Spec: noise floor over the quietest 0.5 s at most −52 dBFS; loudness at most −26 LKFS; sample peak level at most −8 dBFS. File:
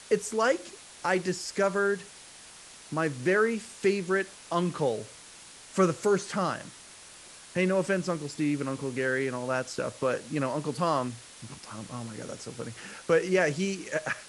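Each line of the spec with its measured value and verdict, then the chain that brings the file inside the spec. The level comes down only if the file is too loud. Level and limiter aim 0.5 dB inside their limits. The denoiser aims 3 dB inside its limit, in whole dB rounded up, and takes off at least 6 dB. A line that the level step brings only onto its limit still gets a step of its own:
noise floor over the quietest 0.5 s −49 dBFS: out of spec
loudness −29.5 LKFS: in spec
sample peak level −11.0 dBFS: in spec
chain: broadband denoise 6 dB, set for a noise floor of −49 dBFS

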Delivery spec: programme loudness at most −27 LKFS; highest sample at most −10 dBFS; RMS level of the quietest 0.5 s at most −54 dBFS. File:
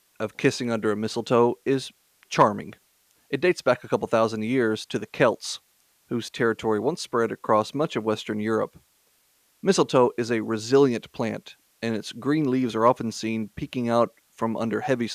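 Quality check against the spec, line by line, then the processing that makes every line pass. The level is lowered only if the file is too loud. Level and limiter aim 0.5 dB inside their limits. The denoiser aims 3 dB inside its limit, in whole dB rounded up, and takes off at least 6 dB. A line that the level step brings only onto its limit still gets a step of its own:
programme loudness −24.5 LKFS: out of spec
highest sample −5.0 dBFS: out of spec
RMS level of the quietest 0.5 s −65 dBFS: in spec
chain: level −3 dB
brickwall limiter −10.5 dBFS

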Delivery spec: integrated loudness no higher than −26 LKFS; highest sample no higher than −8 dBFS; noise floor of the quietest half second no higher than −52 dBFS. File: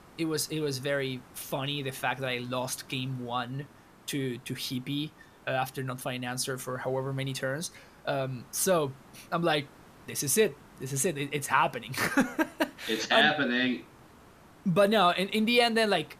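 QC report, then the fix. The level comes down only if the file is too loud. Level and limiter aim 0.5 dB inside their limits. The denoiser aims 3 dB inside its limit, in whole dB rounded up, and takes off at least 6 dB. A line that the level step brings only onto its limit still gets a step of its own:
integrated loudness −29.5 LKFS: in spec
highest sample −9.5 dBFS: in spec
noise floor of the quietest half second −55 dBFS: in spec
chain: no processing needed

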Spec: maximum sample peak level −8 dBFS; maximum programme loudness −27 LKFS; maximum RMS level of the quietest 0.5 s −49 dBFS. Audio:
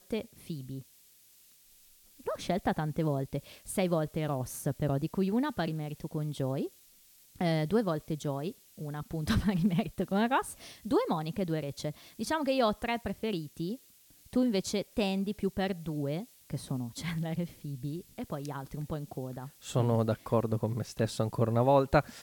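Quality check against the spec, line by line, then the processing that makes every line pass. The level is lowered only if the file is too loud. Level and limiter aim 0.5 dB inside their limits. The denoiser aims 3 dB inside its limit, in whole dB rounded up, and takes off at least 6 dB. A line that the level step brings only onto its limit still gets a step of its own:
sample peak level −10.5 dBFS: in spec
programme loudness −32.5 LKFS: in spec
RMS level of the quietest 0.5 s −61 dBFS: in spec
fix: no processing needed

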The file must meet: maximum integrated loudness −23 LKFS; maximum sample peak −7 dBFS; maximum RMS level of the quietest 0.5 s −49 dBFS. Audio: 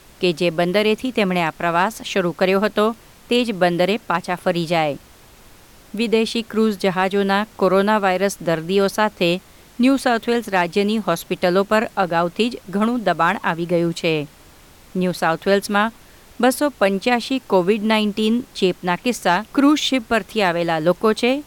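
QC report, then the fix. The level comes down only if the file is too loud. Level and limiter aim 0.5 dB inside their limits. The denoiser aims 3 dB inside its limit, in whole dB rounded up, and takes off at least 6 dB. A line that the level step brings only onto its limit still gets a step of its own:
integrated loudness −19.0 LKFS: out of spec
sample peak −4.5 dBFS: out of spec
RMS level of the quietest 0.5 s −47 dBFS: out of spec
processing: level −4.5 dB

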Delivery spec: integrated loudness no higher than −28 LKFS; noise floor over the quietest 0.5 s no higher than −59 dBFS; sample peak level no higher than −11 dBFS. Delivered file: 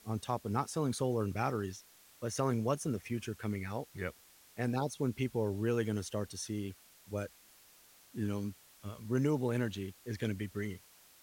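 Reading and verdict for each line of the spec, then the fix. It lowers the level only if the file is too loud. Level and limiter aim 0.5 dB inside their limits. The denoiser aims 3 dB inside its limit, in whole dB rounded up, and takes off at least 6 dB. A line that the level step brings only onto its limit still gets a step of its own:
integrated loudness −36.5 LKFS: in spec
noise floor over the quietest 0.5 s −62 dBFS: in spec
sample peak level −18.5 dBFS: in spec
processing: no processing needed

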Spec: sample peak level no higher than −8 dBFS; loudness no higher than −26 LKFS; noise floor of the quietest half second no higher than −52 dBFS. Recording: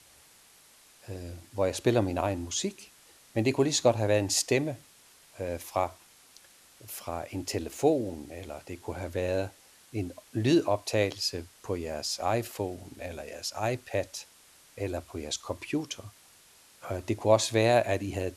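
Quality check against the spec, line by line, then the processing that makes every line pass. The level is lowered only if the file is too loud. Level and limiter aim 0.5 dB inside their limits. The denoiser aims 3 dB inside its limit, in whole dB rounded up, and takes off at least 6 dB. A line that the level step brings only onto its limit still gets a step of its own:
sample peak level −8.5 dBFS: in spec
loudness −30.0 LKFS: in spec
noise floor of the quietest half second −58 dBFS: in spec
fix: no processing needed

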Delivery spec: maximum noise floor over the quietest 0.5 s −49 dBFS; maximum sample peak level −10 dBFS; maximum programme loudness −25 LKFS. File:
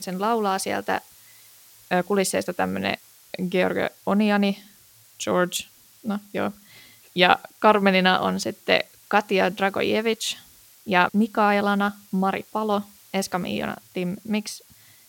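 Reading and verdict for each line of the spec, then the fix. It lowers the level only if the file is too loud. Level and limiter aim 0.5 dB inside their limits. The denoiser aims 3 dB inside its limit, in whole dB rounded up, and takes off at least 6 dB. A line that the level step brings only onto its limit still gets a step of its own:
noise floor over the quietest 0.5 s −53 dBFS: in spec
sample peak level −3.0 dBFS: out of spec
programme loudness −23.5 LKFS: out of spec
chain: level −2 dB
brickwall limiter −10.5 dBFS

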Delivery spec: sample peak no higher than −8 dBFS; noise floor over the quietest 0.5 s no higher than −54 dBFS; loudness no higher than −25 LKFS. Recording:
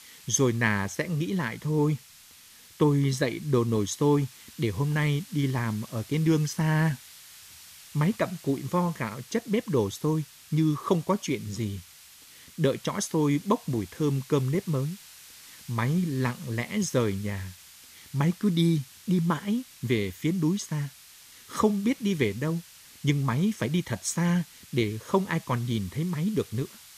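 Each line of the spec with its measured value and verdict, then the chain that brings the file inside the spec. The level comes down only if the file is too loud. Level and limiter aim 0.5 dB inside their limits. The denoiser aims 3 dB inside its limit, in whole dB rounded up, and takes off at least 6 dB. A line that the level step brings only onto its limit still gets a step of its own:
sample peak −9.5 dBFS: in spec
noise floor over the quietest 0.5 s −52 dBFS: out of spec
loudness −27.5 LKFS: in spec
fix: broadband denoise 6 dB, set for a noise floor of −52 dBFS

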